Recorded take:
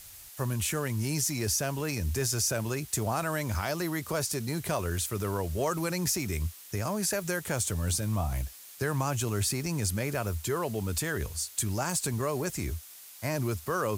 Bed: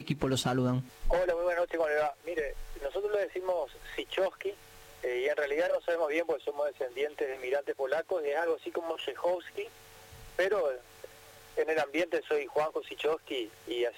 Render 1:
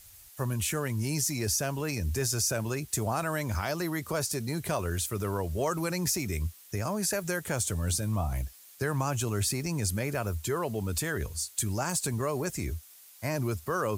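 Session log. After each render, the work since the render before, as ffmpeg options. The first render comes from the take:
ffmpeg -i in.wav -af "afftdn=noise_reduction=6:noise_floor=-49" out.wav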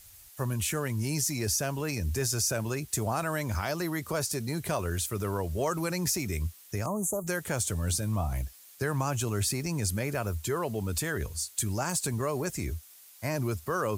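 ffmpeg -i in.wav -filter_complex "[0:a]asettb=1/sr,asplit=3[link_01][link_02][link_03];[link_01]atrim=end=6.864[link_04];[link_02]atrim=start=6.86:end=7.27,asetpts=PTS-STARTPTS,afade=type=in:duration=0.004:curve=qsin,afade=type=out:start_time=0.406:duration=0.004:curve=qsin,asuperstop=centerf=2900:order=20:qfactor=0.55[link_05];[link_03]atrim=start=7.266[link_06];[link_04][link_05]acrossfade=duration=0.004:curve1=hsin:curve2=qsin[link_07];[link_07][link_06]acrossfade=duration=0.004:curve1=qsin:curve2=hsin" out.wav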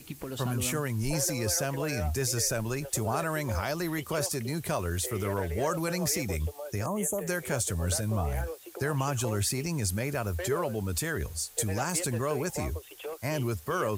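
ffmpeg -i in.wav -i bed.wav -filter_complex "[1:a]volume=-8.5dB[link_01];[0:a][link_01]amix=inputs=2:normalize=0" out.wav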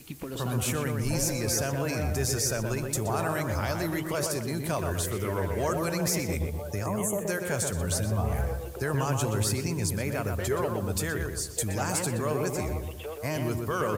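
ffmpeg -i in.wav -filter_complex "[0:a]asplit=2[link_01][link_02];[link_02]adelay=123,lowpass=frequency=1800:poles=1,volume=-3.5dB,asplit=2[link_03][link_04];[link_04]adelay=123,lowpass=frequency=1800:poles=1,volume=0.46,asplit=2[link_05][link_06];[link_06]adelay=123,lowpass=frequency=1800:poles=1,volume=0.46,asplit=2[link_07][link_08];[link_08]adelay=123,lowpass=frequency=1800:poles=1,volume=0.46,asplit=2[link_09][link_10];[link_10]adelay=123,lowpass=frequency=1800:poles=1,volume=0.46,asplit=2[link_11][link_12];[link_12]adelay=123,lowpass=frequency=1800:poles=1,volume=0.46[link_13];[link_01][link_03][link_05][link_07][link_09][link_11][link_13]amix=inputs=7:normalize=0" out.wav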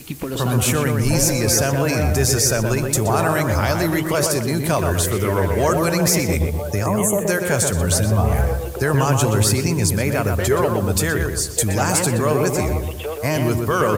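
ffmpeg -i in.wav -af "volume=10.5dB" out.wav

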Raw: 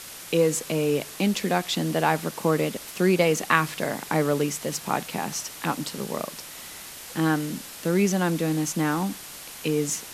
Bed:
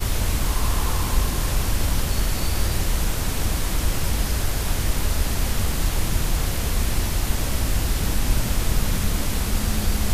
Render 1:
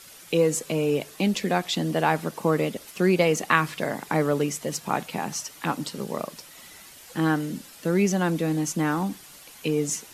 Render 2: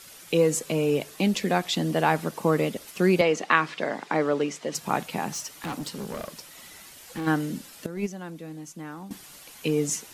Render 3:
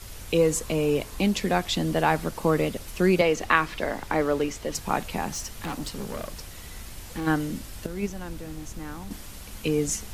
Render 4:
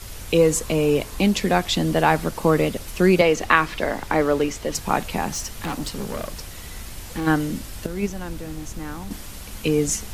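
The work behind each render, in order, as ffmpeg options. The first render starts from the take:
ffmpeg -i in.wav -af "afftdn=noise_reduction=9:noise_floor=-41" out.wav
ffmpeg -i in.wav -filter_complex "[0:a]asettb=1/sr,asplit=3[link_01][link_02][link_03];[link_01]atrim=end=3.214[link_04];[link_02]atrim=start=3.21:end=4.75,asetpts=PTS-STARTPTS,afade=type=in:duration=0.004:curve=qsin,afade=type=out:start_time=1.536:duration=0.004:curve=qsin,highpass=240,lowpass=5000[link_05];[link_03]atrim=start=4.746[link_06];[link_04][link_05]acrossfade=duration=0.004:curve1=hsin:curve2=qsin[link_07];[link_07][link_06]acrossfade=duration=0.004:curve1=qsin:curve2=hsin,asplit=3[link_08][link_09][link_10];[link_08]afade=type=out:start_time=5.32:duration=0.02[link_11];[link_09]asoftclip=type=hard:threshold=-29dB,afade=type=in:start_time=5.32:duration=0.02,afade=type=out:start_time=7.26:duration=0.02[link_12];[link_10]afade=type=in:start_time=7.26:duration=0.02[link_13];[link_11][link_12][link_13]amix=inputs=3:normalize=0,asettb=1/sr,asplit=3[link_14][link_15][link_16];[link_14]atrim=end=7.864[link_17];[link_15]atrim=start=7.86:end=9.11,asetpts=PTS-STARTPTS,afade=type=in:duration=0.004:curve=qsin,afade=type=out:start_time=1.246:duration=0.004:curve=qsin,agate=range=-14dB:threshold=-19dB:ratio=16:release=100:detection=peak[link_18];[link_16]atrim=start=9.106[link_19];[link_17][link_18]acrossfade=duration=0.004:curve1=hsin:curve2=qsin[link_20];[link_20][link_19]acrossfade=duration=0.004:curve1=qsin:curve2=hsin" out.wav
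ffmpeg -i in.wav -i bed.wav -filter_complex "[1:a]volume=-19.5dB[link_01];[0:a][link_01]amix=inputs=2:normalize=0" out.wav
ffmpeg -i in.wav -af "volume=4.5dB,alimiter=limit=-1dB:level=0:latency=1" out.wav

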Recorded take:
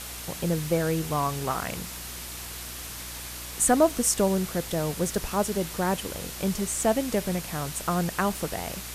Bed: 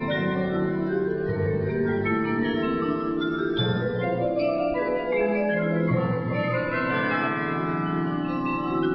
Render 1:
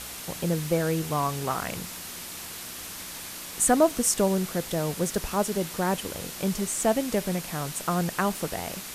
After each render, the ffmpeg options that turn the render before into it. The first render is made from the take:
ffmpeg -i in.wav -af "bandreject=frequency=60:width_type=h:width=4,bandreject=frequency=120:width_type=h:width=4" out.wav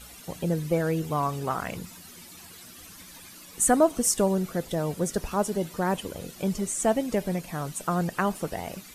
ffmpeg -i in.wav -af "afftdn=noise_reduction=13:noise_floor=-39" out.wav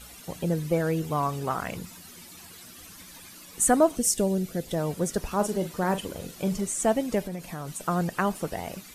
ffmpeg -i in.wav -filter_complex "[0:a]asettb=1/sr,asplit=3[link_01][link_02][link_03];[link_01]atrim=end=3.964[link_04];[link_02]atrim=start=3.96:end=4.68,asetpts=PTS-STARTPTS,afade=type=in:duration=0.004:curve=qsin,afade=type=out:start_time=0.716:duration=0.004:curve=qsin,equalizer=frequency=1100:width=1.3:gain=-12[link_05];[link_03]atrim=start=4.676[link_06];[link_04][link_05]acrossfade=duration=0.004:curve1=hsin:curve2=qsin[link_07];[link_07][link_06]acrossfade=duration=0.004:curve1=qsin:curve2=hsin,asettb=1/sr,asplit=3[link_08][link_09][link_10];[link_08]atrim=end=5.354[link_11];[link_09]atrim=start=5.35:end=6.61,asetpts=PTS-STARTPTS,afade=type=in:duration=0.004:curve=qsin,afade=type=out:start_time=1.256:duration=0.004:curve=qsin,asplit=2[link_12][link_13];[link_13]adelay=43,volume=-10.5dB[link_14];[link_12][link_14]amix=inputs=2:normalize=0,atrim=end_sample=55566[link_15];[link_10]atrim=start=6.606[link_16];[link_11][link_15]acrossfade=duration=0.004:curve1=hsin:curve2=qsin[link_17];[link_17][link_16]acrossfade=duration=0.004:curve1=qsin:curve2=hsin,asettb=1/sr,asplit=3[link_18][link_19][link_20];[link_18]atrim=end=7.214[link_21];[link_19]atrim=start=7.21:end=7.81,asetpts=PTS-STARTPTS,afade=type=in:duration=0.004:curve=qsin,afade=type=out:start_time=0.596:duration=0.004:curve=qsin,acompressor=threshold=-30dB:ratio=6:attack=3.2:release=140:knee=1:detection=peak[link_22];[link_20]atrim=start=7.806[link_23];[link_21][link_22]acrossfade=duration=0.004:curve1=hsin:curve2=qsin[link_24];[link_24][link_23]acrossfade=duration=0.004:curve1=qsin:curve2=hsin" out.wav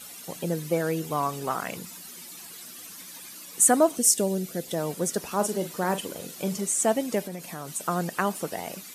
ffmpeg -i in.wav -af "highpass=180,highshelf=frequency=4400:gain=6" out.wav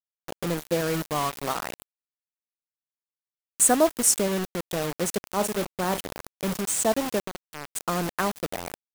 ffmpeg -i in.wav -filter_complex "[0:a]acrossover=split=1700[link_01][link_02];[link_02]aeval=exprs='sgn(val(0))*max(abs(val(0))-0.00631,0)':channel_layout=same[link_03];[link_01][link_03]amix=inputs=2:normalize=0,acrusher=bits=4:mix=0:aa=0.000001" out.wav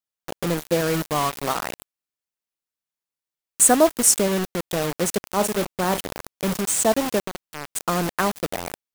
ffmpeg -i in.wav -af "volume=4dB" out.wav

